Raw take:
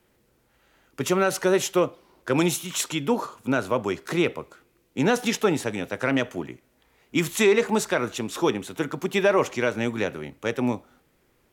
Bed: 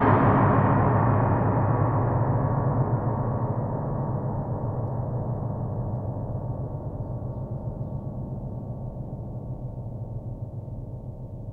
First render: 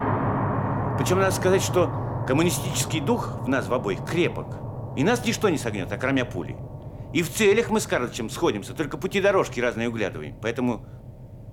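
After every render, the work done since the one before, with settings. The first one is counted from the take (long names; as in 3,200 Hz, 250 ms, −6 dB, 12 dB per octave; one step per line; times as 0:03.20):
mix in bed −5 dB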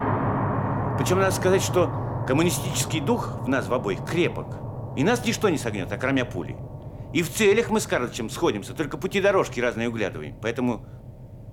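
no processing that can be heard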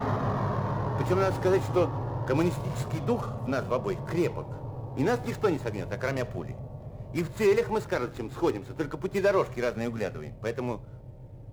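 running median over 15 samples
flanger 0.3 Hz, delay 1.5 ms, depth 1 ms, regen −54%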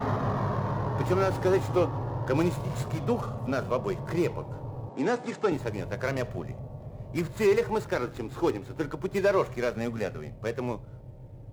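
0:04.89–0:05.52: elliptic band-pass filter 180–8,200 Hz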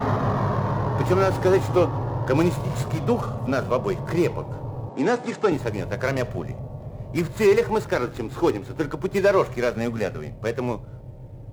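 level +5.5 dB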